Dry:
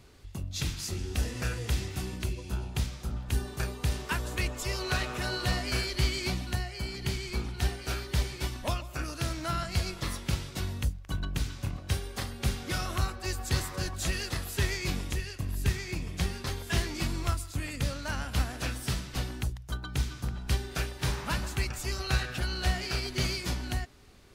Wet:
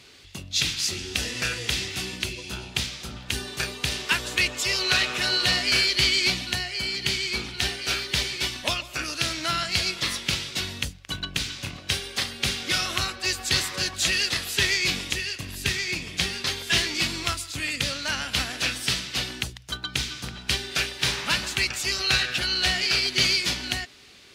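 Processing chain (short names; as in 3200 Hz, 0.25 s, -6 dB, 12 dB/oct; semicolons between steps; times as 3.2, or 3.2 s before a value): weighting filter D; gain +3 dB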